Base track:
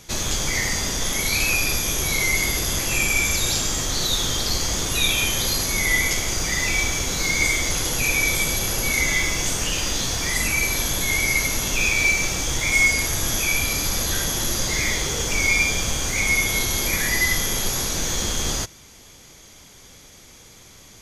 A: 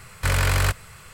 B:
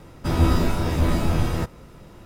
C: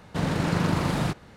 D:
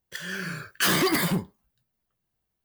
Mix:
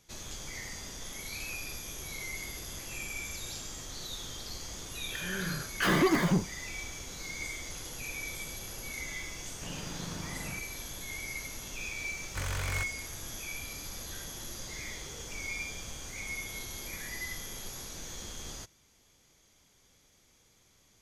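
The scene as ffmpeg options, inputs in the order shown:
-filter_complex "[0:a]volume=-18.5dB[a];[4:a]lowpass=f=1.5k:p=1,atrim=end=2.64,asetpts=PTS-STARTPTS,volume=-0.5dB,afade=t=in:d=0.004:c=hsin,afade=t=out:st=2.636:d=0.004:c=hsin,adelay=5000[b];[3:a]atrim=end=1.36,asetpts=PTS-STARTPTS,volume=-17.5dB,afade=t=in:d=0.004:c=hsin,afade=t=out:st=1.356:d=0.004:c=hsin,adelay=9470[c];[1:a]atrim=end=1.13,asetpts=PTS-STARTPTS,volume=-14dB,afade=t=in:d=0.004:c=hsin,afade=t=out:st=1.126:d=0.004:c=hsin,adelay=12120[d];[a][b][c][d]amix=inputs=4:normalize=0"

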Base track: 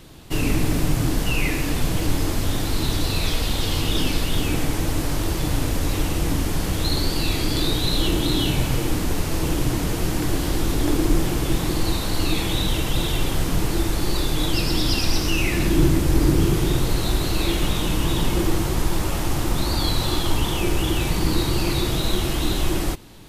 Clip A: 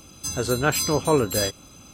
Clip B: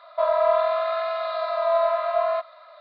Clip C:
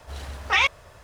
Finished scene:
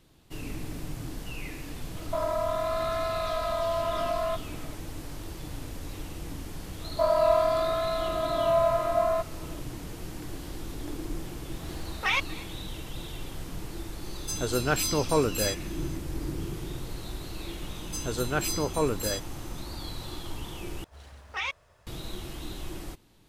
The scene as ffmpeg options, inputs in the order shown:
-filter_complex "[2:a]asplit=2[a][b];[3:a]asplit=2[c][d];[1:a]asplit=2[e][f];[0:a]volume=-16dB[g];[a]acompressor=threshold=-22dB:ratio=6:attack=3.2:release=140:knee=1:detection=peak[h];[b]lowshelf=f=450:g=12[i];[c]aecho=1:1:239:0.0891[j];[g]asplit=2[k][l];[k]atrim=end=20.844[m];[d]atrim=end=1.03,asetpts=PTS-STARTPTS,volume=-12.5dB[n];[l]atrim=start=21.866[o];[h]atrim=end=2.8,asetpts=PTS-STARTPTS,volume=-3dB,afade=t=in:d=0.004:c=hsin,afade=t=out:st=2.796:d=0.004:c=hsin,adelay=1950[p];[i]atrim=end=2.8,asetpts=PTS-STARTPTS,volume=-6dB,afade=t=in:d=0.004:c=hsin,afade=t=out:st=2.796:d=0.004:c=hsin,adelay=6810[q];[j]atrim=end=1.03,asetpts=PTS-STARTPTS,volume=-6.5dB,afade=t=in:d=0.004:c=hsin,afade=t=out:st=1.026:d=0.004:c=hsin,adelay=11530[r];[e]atrim=end=1.93,asetpts=PTS-STARTPTS,volume=-4.5dB,afade=t=in:d=0.004:c=hsin,afade=t=out:st=1.926:d=0.004:c=hsin,adelay=14040[s];[f]atrim=end=1.93,asetpts=PTS-STARTPTS,volume=-7dB,afade=t=in:d=0.004:c=hsin,afade=t=out:st=1.926:d=0.004:c=hsin,adelay=17690[t];[m][n]acrossfade=d=0.004:c1=hsin:c2=hsin[u];[u][o]acrossfade=d=0.004:c1=hsin:c2=hsin[v];[v][p][q][r][s][t]amix=inputs=6:normalize=0"

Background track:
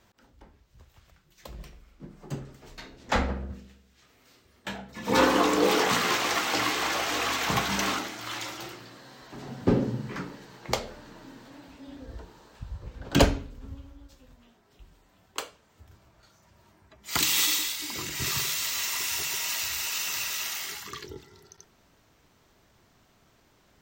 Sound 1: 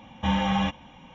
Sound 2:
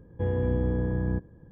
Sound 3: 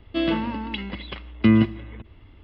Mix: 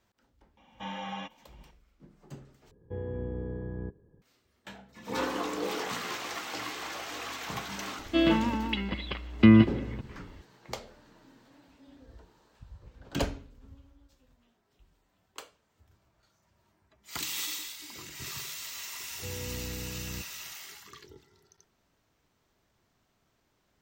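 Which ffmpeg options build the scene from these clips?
-filter_complex "[2:a]asplit=2[a][b];[0:a]volume=-10.5dB[c];[1:a]highpass=260[d];[a]equalizer=f=410:t=o:w=0.23:g=12.5[e];[c]asplit=2[f][g];[f]atrim=end=2.714[h];[e]atrim=end=1.51,asetpts=PTS-STARTPTS,volume=-10.5dB[i];[g]atrim=start=4.216[j];[d]atrim=end=1.14,asetpts=PTS-STARTPTS,volume=-11dB,afade=t=in:d=0.004:c=hsin,afade=t=out:st=1.136:d=0.004:c=hsin,adelay=570[k];[3:a]atrim=end=2.43,asetpts=PTS-STARTPTS,volume=-0.5dB,afade=t=in:d=0.004:c=hsin,afade=t=out:st=2.426:d=0.004:c=hsin,adelay=7990[l];[b]atrim=end=1.51,asetpts=PTS-STARTPTS,volume=-13dB,afade=t=in:d=0.004:c=hsin,afade=t=out:st=1.506:d=0.004:c=hsin,adelay=19030[m];[h][i]acrossfade=d=0.004:c1=hsin:c2=hsin[n];[n][j]acrossfade=d=0.004:c1=hsin:c2=hsin[o];[o][k][l][m]amix=inputs=4:normalize=0"

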